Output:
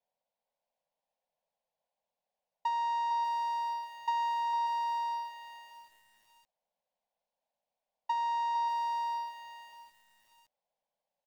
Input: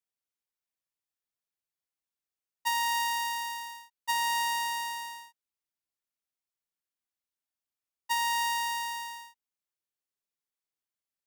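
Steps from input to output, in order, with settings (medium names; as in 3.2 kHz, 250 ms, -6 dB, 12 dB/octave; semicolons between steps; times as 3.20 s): high-order bell 840 Hz +14 dB; in parallel at -1 dB: peak limiter -17.5 dBFS, peak gain reduction 7 dB; on the sum: compression 8:1, threshold -24 dBFS, peak gain reduction 12.5 dB; distance through air 210 m; static phaser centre 340 Hz, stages 6; delay 456 ms -9 dB; bit-crushed delay 588 ms, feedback 35%, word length 9-bit, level -12 dB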